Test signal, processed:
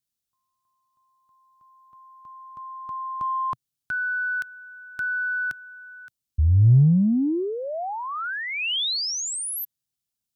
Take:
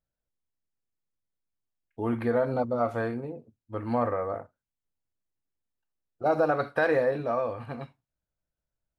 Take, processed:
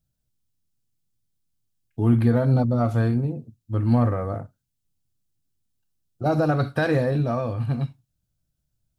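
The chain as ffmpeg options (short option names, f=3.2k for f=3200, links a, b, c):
-filter_complex "[0:a]acrossover=split=3600[a][b];[b]acompressor=threshold=-41dB:ratio=4:attack=1:release=60[c];[a][c]amix=inputs=2:normalize=0,equalizer=f=125:t=o:w=1:g=8,equalizer=f=500:t=o:w=1:g=-9,equalizer=f=1k:t=o:w=1:g=-8,equalizer=f=2k:t=o:w=1:g=-9,asplit=2[d][e];[e]asoftclip=type=tanh:threshold=-28dB,volume=-11.5dB[f];[d][f]amix=inputs=2:normalize=0,volume=8.5dB"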